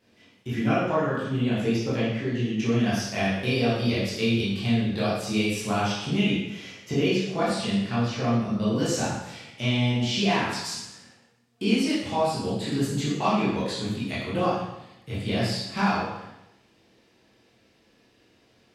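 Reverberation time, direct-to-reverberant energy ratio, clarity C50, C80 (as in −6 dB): 0.85 s, −10.0 dB, 0.5 dB, 3.0 dB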